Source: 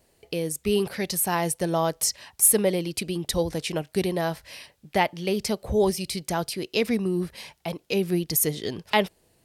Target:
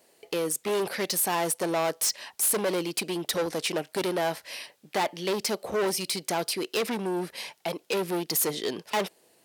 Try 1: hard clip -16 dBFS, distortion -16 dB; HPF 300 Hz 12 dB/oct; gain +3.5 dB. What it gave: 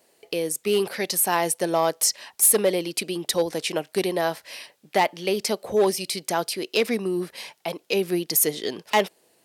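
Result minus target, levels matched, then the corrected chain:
hard clip: distortion -10 dB
hard clip -26 dBFS, distortion -6 dB; HPF 300 Hz 12 dB/oct; gain +3.5 dB

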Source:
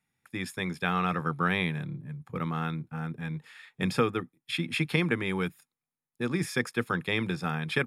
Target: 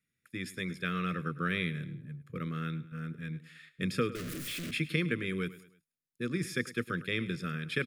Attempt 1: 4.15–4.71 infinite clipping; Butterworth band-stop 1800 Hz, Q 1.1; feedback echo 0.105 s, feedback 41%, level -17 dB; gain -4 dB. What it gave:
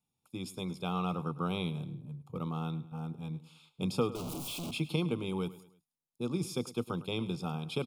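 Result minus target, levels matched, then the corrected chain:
2000 Hz band -10.5 dB
4.15–4.71 infinite clipping; Butterworth band-stop 840 Hz, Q 1.1; feedback echo 0.105 s, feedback 41%, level -17 dB; gain -4 dB

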